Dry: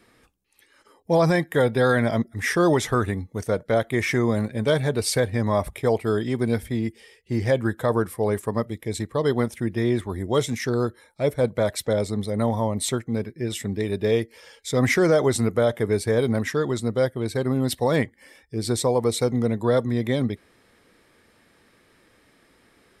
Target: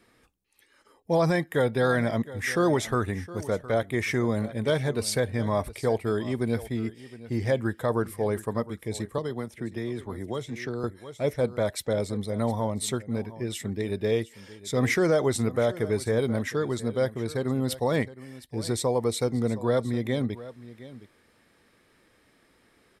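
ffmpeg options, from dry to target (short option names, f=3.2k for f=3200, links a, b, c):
-filter_complex "[0:a]aecho=1:1:714:0.141,asettb=1/sr,asplit=3[a][b][c];[a]atrim=end=9.184[d];[b]atrim=start=9.18:end=10.84,asetpts=PTS-STARTPTS,afade=t=in:d=0.004:c=qsin,afade=t=out:st=1.656:d=0.004:c=qsin,acrossover=split=190|4600[e][f][g];[e]acompressor=threshold=-35dB:ratio=4[h];[f]acompressor=threshold=-27dB:ratio=4[i];[g]acompressor=threshold=-52dB:ratio=4[j];[h][i][j]amix=inputs=3:normalize=0[k];[c]atrim=start=10.836[l];[d][k]acrossfade=d=0.004:c1=hsin:c2=qsin[m];[m][l]acrossfade=d=0.004:c1=qsin:c2=hsin,volume=-4dB"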